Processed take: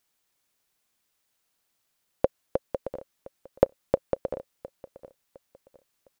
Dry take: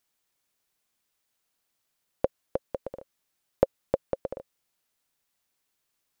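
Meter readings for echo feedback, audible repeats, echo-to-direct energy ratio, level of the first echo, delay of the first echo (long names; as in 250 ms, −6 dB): 32%, 2, −18.0 dB, −18.5 dB, 709 ms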